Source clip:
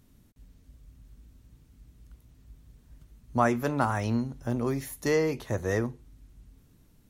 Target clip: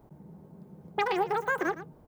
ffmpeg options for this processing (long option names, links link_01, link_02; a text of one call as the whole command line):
ffmpeg -i in.wav -filter_complex "[0:a]equalizer=frequency=1400:width=0.36:gain=-12.5,asetrate=150822,aresample=44100,acrossover=split=3500[link_01][link_02];[link_02]acompressor=threshold=-53dB:ratio=4:attack=1:release=60[link_03];[link_01][link_03]amix=inputs=2:normalize=0,aecho=1:1:114:0.2,volume=3.5dB" out.wav